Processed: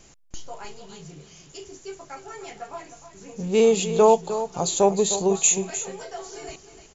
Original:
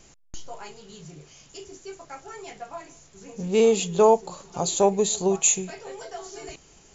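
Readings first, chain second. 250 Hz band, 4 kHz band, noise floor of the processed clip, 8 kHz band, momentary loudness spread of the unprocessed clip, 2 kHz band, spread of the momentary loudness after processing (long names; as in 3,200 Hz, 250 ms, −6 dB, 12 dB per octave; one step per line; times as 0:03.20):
+1.5 dB, +1.5 dB, −52 dBFS, can't be measured, 22 LU, +1.5 dB, 22 LU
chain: single-tap delay 306 ms −11.5 dB
level +1 dB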